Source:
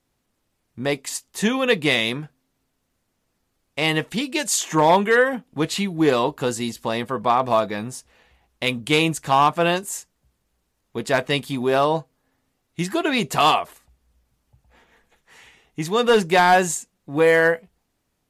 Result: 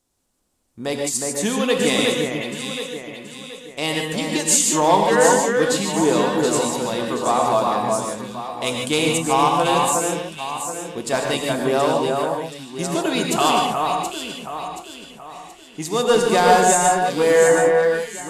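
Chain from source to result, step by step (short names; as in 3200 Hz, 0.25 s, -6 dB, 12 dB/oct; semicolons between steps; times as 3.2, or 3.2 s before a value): graphic EQ 125/2000/8000 Hz -6/-6/+8 dB; on a send: echo with dull and thin repeats by turns 0.363 s, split 2200 Hz, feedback 63%, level -3 dB; on the sum: non-linear reverb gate 0.17 s rising, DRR 2 dB; gain -1 dB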